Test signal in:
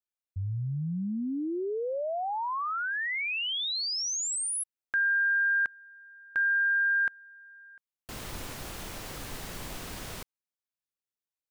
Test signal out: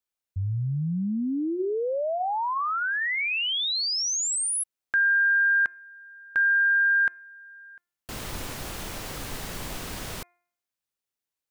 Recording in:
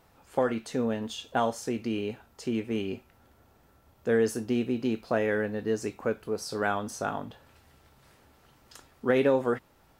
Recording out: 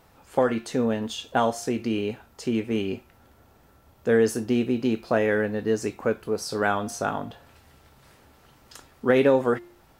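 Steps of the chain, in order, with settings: de-hum 350.6 Hz, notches 7; trim +4.5 dB

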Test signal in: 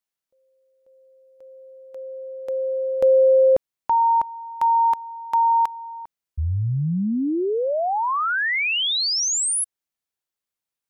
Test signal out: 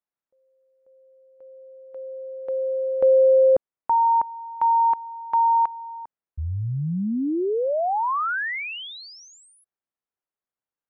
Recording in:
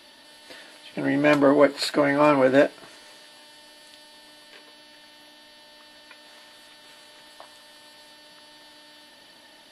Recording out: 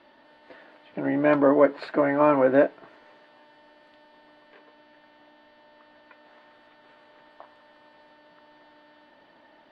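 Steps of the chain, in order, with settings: low-pass 1.5 kHz 12 dB/octave; bass shelf 180 Hz -5.5 dB

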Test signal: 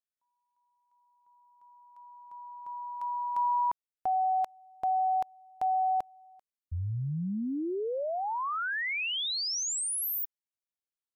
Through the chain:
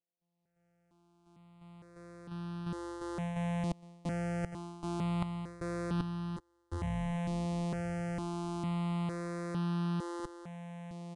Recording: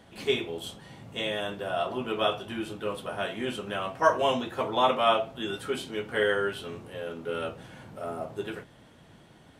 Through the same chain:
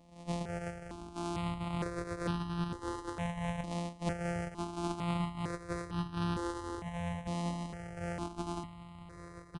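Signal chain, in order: sorted samples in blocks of 256 samples; treble shelf 2.1 kHz -7.5 dB; level rider gain up to 9 dB; resampled via 22.05 kHz; delay 1160 ms -16 dB; reverse; compression 4:1, threshold -29 dBFS; reverse; stepped phaser 2.2 Hz 400–2100 Hz; trim -2 dB

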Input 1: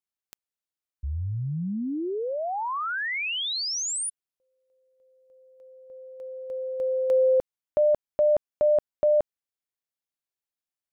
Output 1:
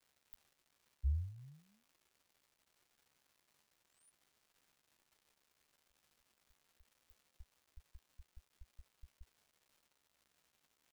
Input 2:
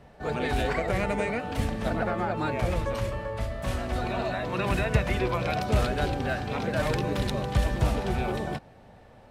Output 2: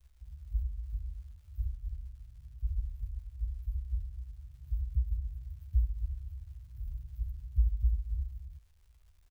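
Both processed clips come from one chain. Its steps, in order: inverse Chebyshev band-stop 280–6800 Hz, stop band 70 dB; crackle 380 per s -61 dBFS; doubling 14 ms -9 dB

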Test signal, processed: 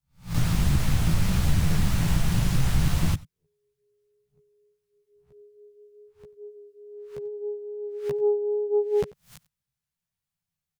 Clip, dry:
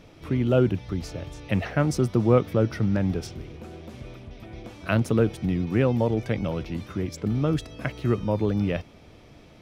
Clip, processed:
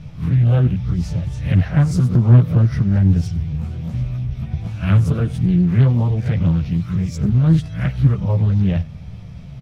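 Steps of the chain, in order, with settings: reverse spectral sustain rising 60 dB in 0.32 s; chorus voices 2, 0.62 Hz, delay 14 ms, depth 3.3 ms; resonant low shelf 220 Hz +13 dB, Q 3; in parallel at +1 dB: compression, threshold -21 dBFS; on the sum: dynamic bell 140 Hz, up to -4 dB, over -20 dBFS, Q 0.9; on a send: delay 91 ms -22 dB; on the sum: loudspeaker Doppler distortion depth 0.61 ms; trim -1.5 dB

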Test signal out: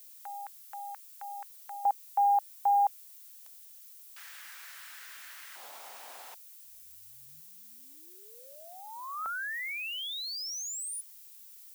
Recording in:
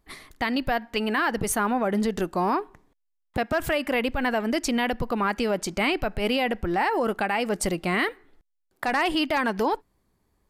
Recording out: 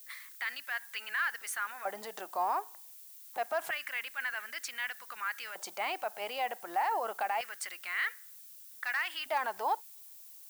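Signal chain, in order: peak limiter -19.5 dBFS; LFO high-pass square 0.27 Hz 760–1600 Hz; added noise violet -44 dBFS; trim -8 dB

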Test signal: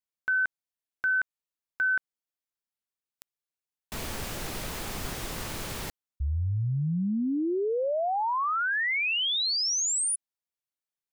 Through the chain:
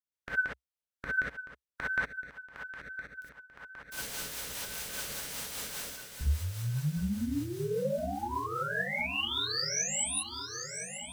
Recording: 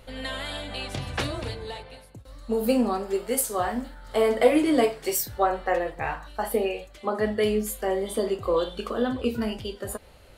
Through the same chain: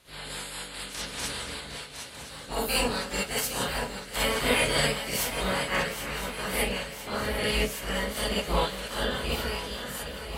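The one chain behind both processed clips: spectral peaks clipped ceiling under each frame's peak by 29 dB; peaking EQ 64 Hz +9.5 dB 0.74 oct; shuffle delay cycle 1014 ms, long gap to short 3:1, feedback 59%, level -10.5 dB; rotary cabinet horn 5 Hz; gated-style reverb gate 80 ms rising, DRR -6 dB; trim -8.5 dB

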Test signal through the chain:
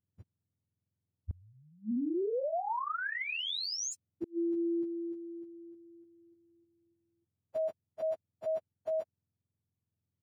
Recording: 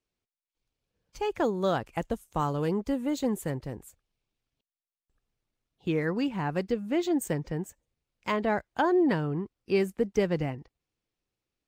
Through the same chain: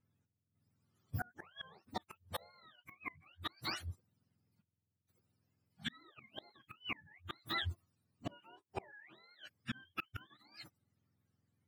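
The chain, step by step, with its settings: spectrum inverted on a logarithmic axis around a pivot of 780 Hz; inverted gate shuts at -26 dBFS, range -35 dB; peak limiter -32 dBFS; trim +4 dB

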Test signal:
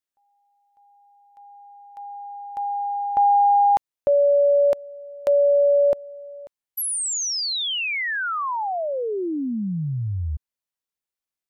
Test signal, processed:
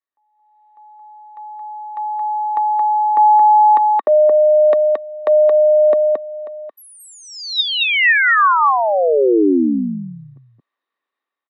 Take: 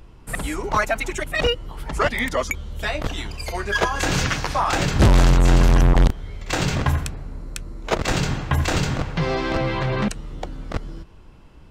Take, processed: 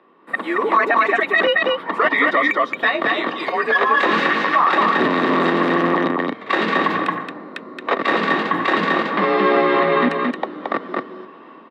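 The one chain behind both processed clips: dynamic bell 790 Hz, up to -5 dB, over -30 dBFS, Q 0.87; level rider gain up to 13 dB; high-pass 220 Hz 24 dB/octave; distance through air 440 m; small resonant body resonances 1.1/1.8/3.7 kHz, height 13 dB, ringing for 30 ms; on a send: delay 223 ms -3.5 dB; on the sum: peak limiter -6.5 dBFS; frequency shift +38 Hz

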